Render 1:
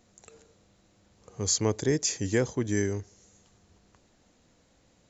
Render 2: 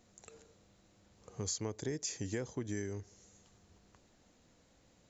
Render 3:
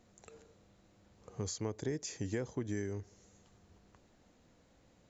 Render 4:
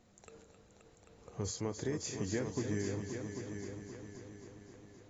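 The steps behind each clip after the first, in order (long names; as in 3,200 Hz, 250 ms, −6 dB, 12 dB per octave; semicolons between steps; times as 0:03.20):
downward compressor 4 to 1, threshold −33 dBFS, peak gain reduction 11.5 dB; level −3 dB
high-shelf EQ 3,600 Hz −7.5 dB; level +1.5 dB
echo machine with several playback heads 264 ms, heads all three, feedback 53%, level −10.5 dB; AAC 24 kbit/s 22,050 Hz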